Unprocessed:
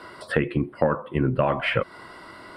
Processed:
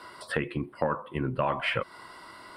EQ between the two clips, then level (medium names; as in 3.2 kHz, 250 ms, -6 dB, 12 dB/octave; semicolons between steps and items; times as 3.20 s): peaking EQ 990 Hz +5.5 dB 0.62 oct; treble shelf 2.8 kHz +10 dB; -8.0 dB